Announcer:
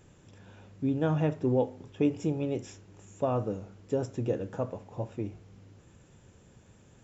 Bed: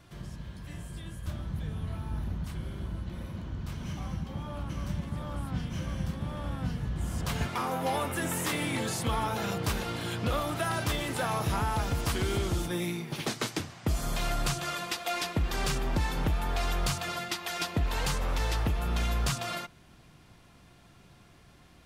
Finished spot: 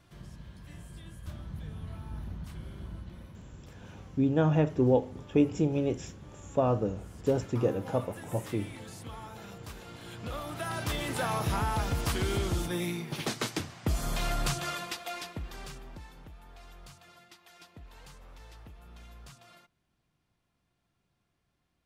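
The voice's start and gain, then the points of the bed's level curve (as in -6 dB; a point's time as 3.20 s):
3.35 s, +2.5 dB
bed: 2.96 s -5.5 dB
3.74 s -14.5 dB
9.72 s -14.5 dB
11.10 s -0.5 dB
14.67 s -0.5 dB
16.25 s -21.5 dB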